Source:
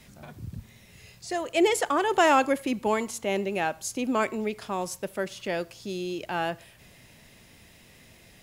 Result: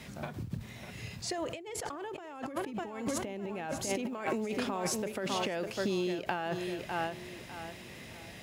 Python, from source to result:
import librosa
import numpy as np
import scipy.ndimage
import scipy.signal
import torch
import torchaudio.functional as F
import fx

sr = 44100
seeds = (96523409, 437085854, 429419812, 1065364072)

y = fx.echo_feedback(x, sr, ms=601, feedback_pct=29, wet_db=-12.0)
y = fx.quant_float(y, sr, bits=4)
y = fx.low_shelf(y, sr, hz=250.0, db=9.0, at=(1.38, 3.9))
y = fx.over_compress(y, sr, threshold_db=-35.0, ratio=-1.0)
y = fx.highpass(y, sr, hz=95.0, slope=6)
y = fx.high_shelf(y, sr, hz=6100.0, db=-9.0)
y = fx.end_taper(y, sr, db_per_s=110.0)